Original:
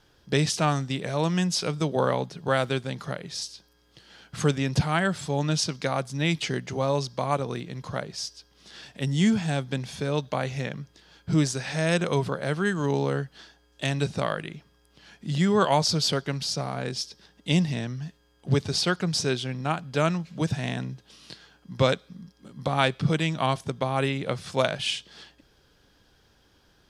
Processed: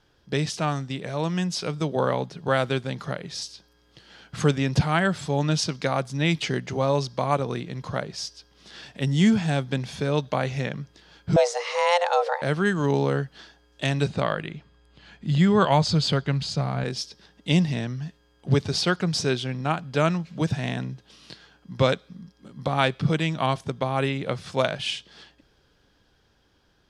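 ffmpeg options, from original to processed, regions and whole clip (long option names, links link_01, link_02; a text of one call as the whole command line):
ffmpeg -i in.wav -filter_complex "[0:a]asettb=1/sr,asplit=3[link_01][link_02][link_03];[link_01]atrim=end=11.364[link_04];[link_02]atrim=start=11.36:end=12.42,asetpts=PTS-STARTPTS,afade=type=in:duration=0.004:curve=qsin,afade=type=out:start_time=1.056:duration=0.004:curve=qsin,lowpass=7000,afreqshift=350[link_05];[link_03]atrim=start=12.416[link_06];[link_04][link_05]acrossfade=duration=0.004:curve1=hsin:curve2=qsin[link_07];[link_07][link_06]acrossfade=duration=0.004:curve1=qsin:curve2=hsin,asettb=1/sr,asplit=3[link_08][link_09][link_10];[link_08]atrim=end=14.084[link_11];[link_09]atrim=start=14.08:end=16.84,asetpts=PTS-STARTPTS,afade=type=in:duration=0.004:curve=qsin,afade=type=out:start_time=2.756:duration=0.004:curve=qsin,lowpass=7500,bandreject=frequency=5600:width=5.6,asubboost=boost=3:cutoff=200[link_12];[link_10]atrim=start=16.836[link_13];[link_11][link_12]acrossfade=duration=0.004:curve1=hsin:curve2=qsin[link_14];[link_14][link_13]acrossfade=duration=0.004:curve1=qsin:curve2=hsin,highshelf=frequency=8300:gain=-9,dynaudnorm=framelen=320:gausssize=13:maxgain=5dB,volume=-2dB" out.wav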